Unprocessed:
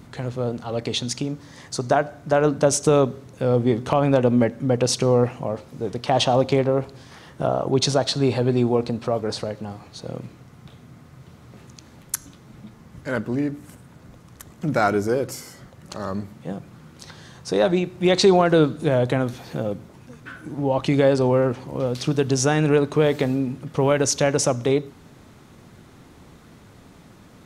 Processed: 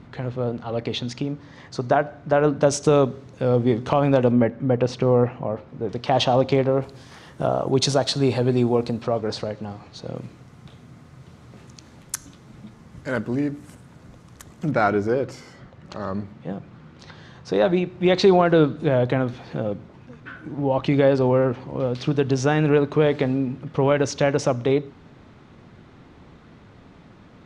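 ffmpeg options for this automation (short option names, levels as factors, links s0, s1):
-af "asetnsamples=n=441:p=0,asendcmd='2.62 lowpass f 5800;4.32 lowpass f 2400;5.89 lowpass f 5000;6.82 lowpass f 12000;9.02 lowpass f 5800;10.16 lowpass f 9600;14.71 lowpass f 3700',lowpass=3400"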